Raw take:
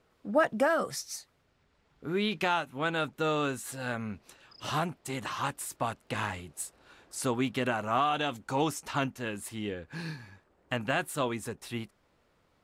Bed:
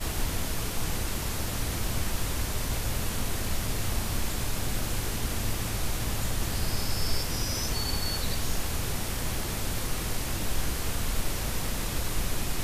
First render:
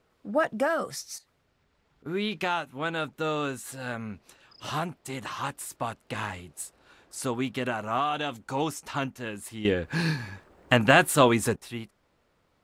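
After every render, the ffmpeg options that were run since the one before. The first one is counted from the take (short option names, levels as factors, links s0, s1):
-filter_complex "[0:a]asettb=1/sr,asplit=3[s0][s1][s2];[s0]atrim=end=1.184[s3];[s1]atrim=start=1.18:end=2.06,asetpts=PTS-STARTPTS,afade=t=in:d=0.004:c=qsin,afade=t=out:st=0.876:d=0.004:c=qsin,acompressor=threshold=0.00178:ratio=4:attack=3.2:release=140:knee=1:detection=peak[s4];[s2]atrim=start=2.056[s5];[s3][s4]acrossfade=d=0.004:c1=hsin:c2=qsin[s6];[s6][s5]acrossfade=d=0.004:c1=qsin:c2=hsin,asplit=3[s7][s8][s9];[s7]atrim=end=9.652[s10];[s8]atrim=start=9.648:end=11.562,asetpts=PTS-STARTPTS,volume=3.76[s11];[s9]atrim=start=11.558[s12];[s10][s11]acrossfade=d=0.004:c1=hsin:c2=hsin[s13];[s13][s12]acrossfade=d=0.004:c1=hsin:c2=hsin"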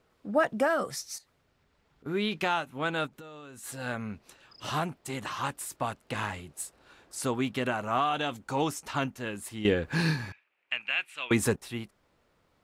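-filter_complex "[0:a]asplit=3[s0][s1][s2];[s0]afade=t=out:st=3.06:d=0.02[s3];[s1]acompressor=threshold=0.00708:ratio=12:attack=3.2:release=140:knee=1:detection=peak,afade=t=in:st=3.06:d=0.02,afade=t=out:st=3.62:d=0.02[s4];[s2]afade=t=in:st=3.62:d=0.02[s5];[s3][s4][s5]amix=inputs=3:normalize=0,asettb=1/sr,asplit=3[s6][s7][s8];[s6]atrim=end=10.324[s9];[s7]atrim=start=10.32:end=11.31,asetpts=PTS-STARTPTS,afade=t=in:d=0.004:c=qsin,afade=t=out:st=0.986:d=0.004:c=qsin,bandpass=f=2500:t=q:w=5.8[s10];[s8]atrim=start=11.306[s11];[s9][s10]acrossfade=d=0.004:c1=hsin:c2=qsin[s12];[s12][s11]acrossfade=d=0.004:c1=qsin:c2=hsin"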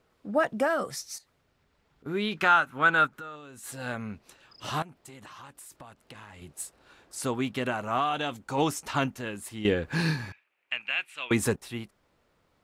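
-filter_complex "[0:a]asettb=1/sr,asplit=3[s0][s1][s2];[s0]atrim=end=2.374[s3];[s1]atrim=start=2.37:end=3.36,asetpts=PTS-STARTPTS,afade=t=in:d=0.004:c=qsin,afade=t=out:st=0.986:d=0.004:c=qsin,equalizer=f=1400:w=2:g=13.5[s4];[s2]atrim=start=3.356[s5];[s3][s4]acrossfade=d=0.004:c1=hsin:c2=qsin[s6];[s6][s5]acrossfade=d=0.004:c1=qsin:c2=hsin,asettb=1/sr,asplit=3[s7][s8][s9];[s7]atrim=end=4.824[s10];[s8]atrim=start=4.82:end=6.42,asetpts=PTS-STARTPTS,afade=t=in:d=0.004:c=qsin,afade=t=out:st=1.596:d=0.004:c=qsin,acompressor=threshold=0.00562:ratio=5:attack=3.2:release=140:knee=1:detection=peak[s11];[s9]atrim=start=6.416[s12];[s10][s11]acrossfade=d=0.004:c1=hsin:c2=qsin[s13];[s13][s12]acrossfade=d=0.004:c1=qsin:c2=hsin,asplit=3[s14][s15][s16];[s14]atrim=end=8.582[s17];[s15]atrim=start=8.578:end=9.212,asetpts=PTS-STARTPTS,volume=1.41[s18];[s16]atrim=start=9.208[s19];[s17][s18]acrossfade=d=0.004:c1=hsin:c2=hsin[s20];[s20][s19]acrossfade=d=0.004:c1=hsin:c2=hsin"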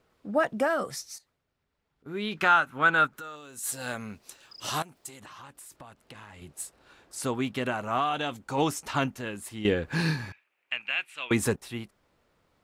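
-filter_complex "[0:a]asettb=1/sr,asplit=3[s0][s1][s2];[s0]atrim=end=3.174[s3];[s1]atrim=start=3.17:end=5.2,asetpts=PTS-STARTPTS,afade=t=in:d=0.004:c=qsin,afade=t=out:st=2.026:d=0.004:c=qsin,bass=f=250:g=-4,treble=f=4000:g=10[s4];[s2]atrim=start=5.196[s5];[s3][s4]acrossfade=d=0.004:c1=hsin:c2=qsin[s6];[s6][s5]acrossfade=d=0.004:c1=qsin:c2=hsin,asplit=3[s7][s8][s9];[s7]atrim=end=1.39,asetpts=PTS-STARTPTS,afade=t=out:st=0.95:d=0.44:silence=0.316228[s10];[s8]atrim=start=1.39:end=1.97,asetpts=PTS-STARTPTS,volume=0.316[s11];[s9]atrim=start=1.97,asetpts=PTS-STARTPTS,afade=t=in:d=0.44:silence=0.316228[s12];[s10][s11][s12]concat=n=3:v=0:a=1"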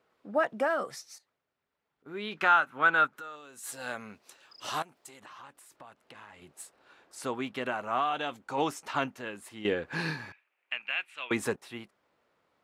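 -af "highpass=f=460:p=1,highshelf=f=4100:g=-10"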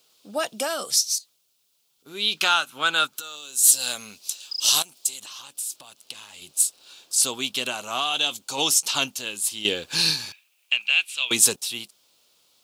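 -af "aexciter=amount=15.8:drive=3.9:freq=2900"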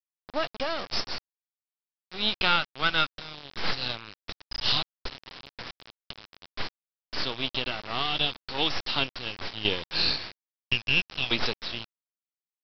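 -af "aeval=exprs='if(lt(val(0),0),0.251*val(0),val(0))':c=same,aresample=11025,acrusher=bits=5:mix=0:aa=0.000001,aresample=44100"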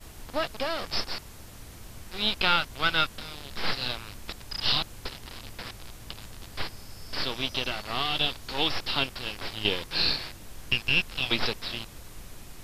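-filter_complex "[1:a]volume=0.178[s0];[0:a][s0]amix=inputs=2:normalize=0"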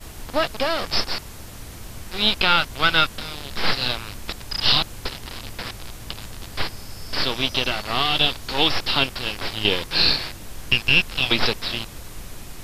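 -af "volume=2.37,alimiter=limit=0.794:level=0:latency=1"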